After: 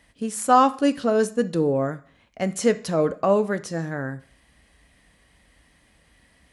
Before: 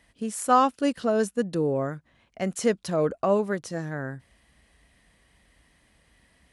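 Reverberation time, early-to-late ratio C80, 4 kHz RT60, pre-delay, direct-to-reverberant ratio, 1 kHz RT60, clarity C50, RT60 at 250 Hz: 0.45 s, 21.5 dB, 0.40 s, 3 ms, 10.5 dB, 0.45 s, 17.5 dB, 0.50 s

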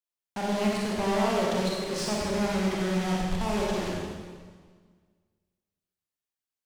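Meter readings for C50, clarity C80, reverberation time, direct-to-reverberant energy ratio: -2.0 dB, 0.0 dB, 1.6 s, -4.5 dB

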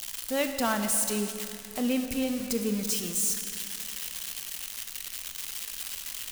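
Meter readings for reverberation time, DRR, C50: 2.6 s, 5.5 dB, 6.5 dB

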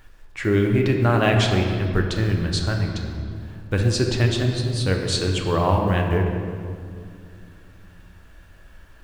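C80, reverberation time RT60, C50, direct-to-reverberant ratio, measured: 5.0 dB, 2.3 s, 4.0 dB, 1.5 dB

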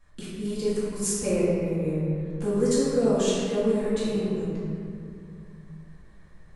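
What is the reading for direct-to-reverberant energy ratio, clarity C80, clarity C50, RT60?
-11.0 dB, -0.5 dB, -3.0 dB, 2.4 s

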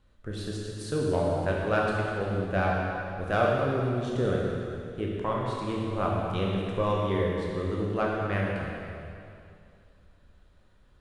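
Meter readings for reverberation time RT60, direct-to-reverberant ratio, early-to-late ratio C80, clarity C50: 2.5 s, -3.5 dB, 0.5 dB, -1.5 dB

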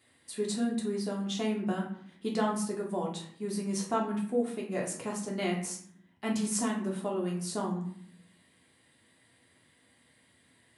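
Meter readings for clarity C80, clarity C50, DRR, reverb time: 10.5 dB, 6.5 dB, -2.5 dB, 0.60 s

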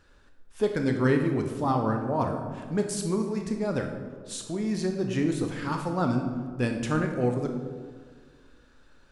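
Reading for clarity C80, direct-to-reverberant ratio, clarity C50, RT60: 8.0 dB, 3.5 dB, 6.0 dB, 1.7 s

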